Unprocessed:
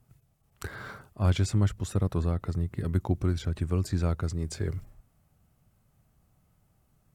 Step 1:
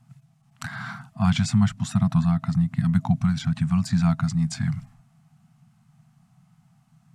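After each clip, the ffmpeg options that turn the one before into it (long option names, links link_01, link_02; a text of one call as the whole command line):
ffmpeg -i in.wav -af "lowpass=8100,lowshelf=frequency=100:width_type=q:width=3:gain=-13,afftfilt=real='re*(1-between(b*sr/4096,250,650))':imag='im*(1-between(b*sr/4096,250,650))':win_size=4096:overlap=0.75,volume=7dB" out.wav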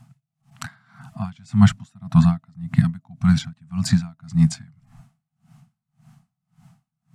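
ffmpeg -i in.wav -af "aeval=exprs='val(0)*pow(10,-35*(0.5-0.5*cos(2*PI*1.8*n/s))/20)':channel_layout=same,volume=9dB" out.wav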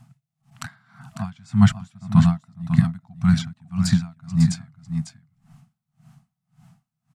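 ffmpeg -i in.wav -af "aecho=1:1:549:0.355,volume=-1dB" out.wav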